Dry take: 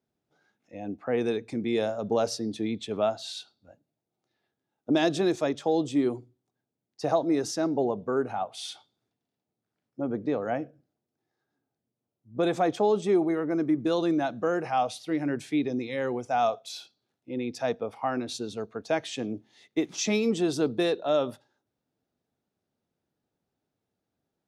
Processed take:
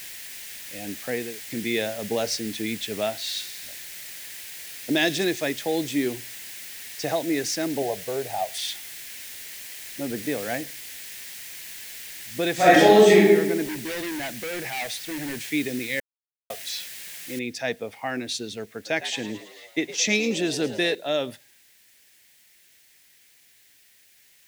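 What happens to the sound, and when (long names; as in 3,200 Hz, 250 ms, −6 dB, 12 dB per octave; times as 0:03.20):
0:01.00–0:01.50: fade out and dull
0:03.02–0:05.25: delay with a high-pass on its return 60 ms, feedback 78%, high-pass 5,300 Hz, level −6 dB
0:05.92–0:07.11: parametric band 7,300 Hz +5.5 dB
0:07.82–0:08.58: drawn EQ curve 150 Hz 0 dB, 240 Hz −12 dB, 680 Hz +8 dB, 1,400 Hz −11 dB, 4,100 Hz −1 dB, 10,000 Hz +10 dB
0:10.18–0:10.61: spike at every zero crossing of −32 dBFS
0:12.54–0:13.14: thrown reverb, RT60 1.2 s, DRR −11.5 dB
0:13.65–0:15.48: hard clipping −30 dBFS
0:16.00–0:16.50: silence
0:17.39: noise floor change −46 dB −64 dB
0:18.68–0:20.95: echo with shifted repeats 110 ms, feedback 62%, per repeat +88 Hz, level −14 dB
whole clip: high shelf with overshoot 1,500 Hz +6.5 dB, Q 3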